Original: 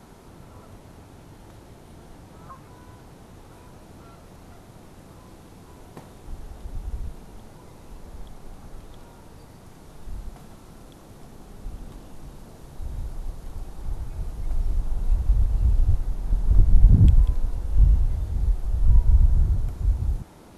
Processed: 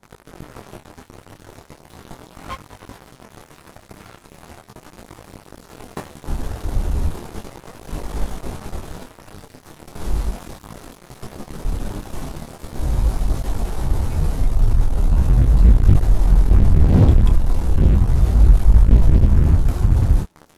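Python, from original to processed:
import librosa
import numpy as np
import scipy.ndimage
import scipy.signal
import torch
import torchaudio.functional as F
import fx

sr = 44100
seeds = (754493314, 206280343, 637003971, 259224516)

y = fx.leveller(x, sr, passes=5)
y = fx.detune_double(y, sr, cents=13)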